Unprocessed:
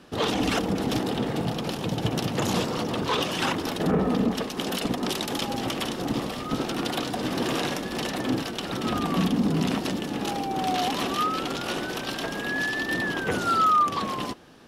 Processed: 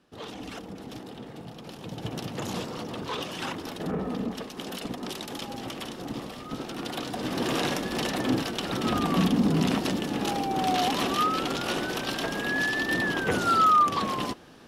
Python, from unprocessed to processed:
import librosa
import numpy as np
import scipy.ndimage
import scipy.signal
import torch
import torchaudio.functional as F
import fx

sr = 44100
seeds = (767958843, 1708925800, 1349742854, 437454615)

y = fx.gain(x, sr, db=fx.line((1.5, -14.5), (2.12, -7.5), (6.67, -7.5), (7.68, 0.5)))